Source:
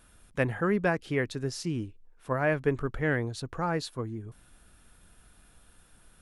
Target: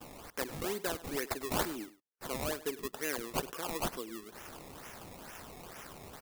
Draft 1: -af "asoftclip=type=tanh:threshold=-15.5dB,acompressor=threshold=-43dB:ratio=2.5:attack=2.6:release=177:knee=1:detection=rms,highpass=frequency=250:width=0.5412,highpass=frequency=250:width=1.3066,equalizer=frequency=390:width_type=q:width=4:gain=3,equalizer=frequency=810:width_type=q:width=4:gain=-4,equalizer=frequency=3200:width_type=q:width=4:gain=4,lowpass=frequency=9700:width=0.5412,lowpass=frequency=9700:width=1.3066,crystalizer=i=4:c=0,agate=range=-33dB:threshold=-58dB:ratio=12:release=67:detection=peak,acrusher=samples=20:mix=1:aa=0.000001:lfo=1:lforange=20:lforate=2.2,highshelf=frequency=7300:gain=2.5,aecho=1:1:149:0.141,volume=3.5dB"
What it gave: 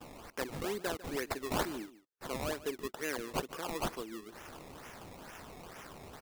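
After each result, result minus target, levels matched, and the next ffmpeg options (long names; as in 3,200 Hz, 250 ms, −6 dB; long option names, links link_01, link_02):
echo 49 ms late; soft clipping: distortion +13 dB; 8,000 Hz band −3.0 dB
-af "asoftclip=type=tanh:threshold=-15.5dB,acompressor=threshold=-43dB:ratio=2.5:attack=2.6:release=177:knee=1:detection=rms,highpass=frequency=250:width=0.5412,highpass=frequency=250:width=1.3066,equalizer=frequency=390:width_type=q:width=4:gain=3,equalizer=frequency=810:width_type=q:width=4:gain=-4,equalizer=frequency=3200:width_type=q:width=4:gain=4,lowpass=frequency=9700:width=0.5412,lowpass=frequency=9700:width=1.3066,crystalizer=i=4:c=0,agate=range=-33dB:threshold=-58dB:ratio=12:release=67:detection=peak,acrusher=samples=20:mix=1:aa=0.000001:lfo=1:lforange=20:lforate=2.2,highshelf=frequency=7300:gain=2.5,aecho=1:1:100:0.141,volume=3.5dB"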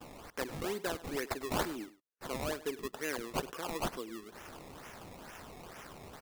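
soft clipping: distortion +13 dB; 8,000 Hz band −3.0 dB
-af "asoftclip=type=tanh:threshold=-8dB,acompressor=threshold=-43dB:ratio=2.5:attack=2.6:release=177:knee=1:detection=rms,highpass=frequency=250:width=0.5412,highpass=frequency=250:width=1.3066,equalizer=frequency=390:width_type=q:width=4:gain=3,equalizer=frequency=810:width_type=q:width=4:gain=-4,equalizer=frequency=3200:width_type=q:width=4:gain=4,lowpass=frequency=9700:width=0.5412,lowpass=frequency=9700:width=1.3066,crystalizer=i=4:c=0,agate=range=-33dB:threshold=-58dB:ratio=12:release=67:detection=peak,acrusher=samples=20:mix=1:aa=0.000001:lfo=1:lforange=20:lforate=2.2,highshelf=frequency=7300:gain=2.5,aecho=1:1:100:0.141,volume=3.5dB"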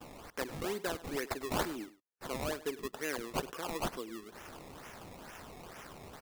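8,000 Hz band −3.0 dB
-af "asoftclip=type=tanh:threshold=-8dB,acompressor=threshold=-43dB:ratio=2.5:attack=2.6:release=177:knee=1:detection=rms,highpass=frequency=250:width=0.5412,highpass=frequency=250:width=1.3066,equalizer=frequency=390:width_type=q:width=4:gain=3,equalizer=frequency=810:width_type=q:width=4:gain=-4,equalizer=frequency=3200:width_type=q:width=4:gain=4,lowpass=frequency=9700:width=0.5412,lowpass=frequency=9700:width=1.3066,crystalizer=i=4:c=0,agate=range=-33dB:threshold=-58dB:ratio=12:release=67:detection=peak,acrusher=samples=20:mix=1:aa=0.000001:lfo=1:lforange=20:lforate=2.2,highshelf=frequency=7300:gain=10,aecho=1:1:100:0.141,volume=3.5dB"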